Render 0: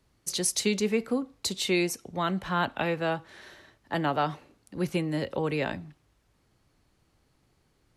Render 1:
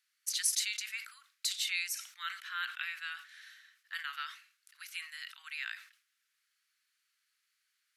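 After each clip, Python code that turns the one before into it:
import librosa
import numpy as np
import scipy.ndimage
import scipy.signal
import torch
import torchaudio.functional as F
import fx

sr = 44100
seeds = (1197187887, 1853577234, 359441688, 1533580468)

y = scipy.signal.sosfilt(scipy.signal.butter(8, 1400.0, 'highpass', fs=sr, output='sos'), x)
y = fx.peak_eq(y, sr, hz=12000.0, db=4.5, octaves=0.21)
y = fx.sustainer(y, sr, db_per_s=120.0)
y = F.gain(torch.from_numpy(y), -3.5).numpy()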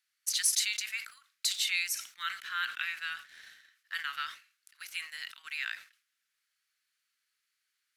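y = fx.leveller(x, sr, passes=1)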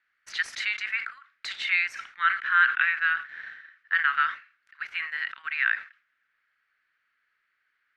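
y = fx.lowpass_res(x, sr, hz=1700.0, q=2.0)
y = F.gain(torch.from_numpy(y), 8.5).numpy()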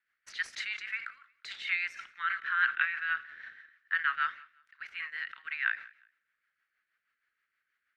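y = fx.rotary(x, sr, hz=6.3)
y = fx.echo_feedback(y, sr, ms=178, feedback_pct=27, wet_db=-23.5)
y = F.gain(torch.from_numpy(y), -4.0).numpy()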